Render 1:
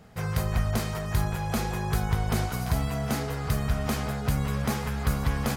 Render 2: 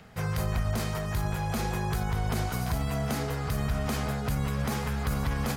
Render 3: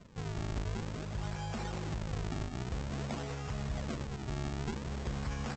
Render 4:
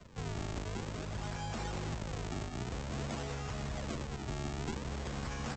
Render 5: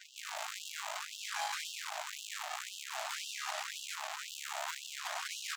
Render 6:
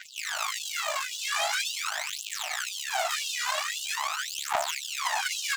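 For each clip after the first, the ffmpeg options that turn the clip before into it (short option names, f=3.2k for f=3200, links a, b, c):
-filter_complex "[0:a]acrossover=split=340|1200|3700[a][b][c][d];[c]acompressor=mode=upward:threshold=-55dB:ratio=2.5[e];[a][b][e][d]amix=inputs=4:normalize=0,alimiter=limit=-20dB:level=0:latency=1:release=27"
-af "acompressor=mode=upward:threshold=-42dB:ratio=2.5,aresample=16000,acrusher=samples=18:mix=1:aa=0.000001:lfo=1:lforange=28.8:lforate=0.51,aresample=44100,volume=-8dB"
-filter_complex "[0:a]acrossover=split=120|370|3500[a][b][c][d];[a]alimiter=level_in=15.5dB:limit=-24dB:level=0:latency=1:release=374,volume=-15.5dB[e];[b]tremolo=f=90:d=0.947[f];[c]asoftclip=type=tanh:threshold=-39dB[g];[e][f][g][d]amix=inputs=4:normalize=0,volume=2.5dB"
-filter_complex "[0:a]aeval=exprs='(tanh(200*val(0)+0.6)-tanh(0.6))/200':c=same,acrossover=split=130[a][b];[a]acrusher=bits=2:mode=log:mix=0:aa=0.000001[c];[c][b]amix=inputs=2:normalize=0,afftfilt=real='re*gte(b*sr/1024,560*pow(2700/560,0.5+0.5*sin(2*PI*1.9*pts/sr)))':imag='im*gte(b*sr/1024,560*pow(2700/560,0.5+0.5*sin(2*PI*1.9*pts/sr)))':win_size=1024:overlap=0.75,volume=15dB"
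-af "aphaser=in_gain=1:out_gain=1:delay=2.1:decay=0.75:speed=0.44:type=triangular,volume=7dB"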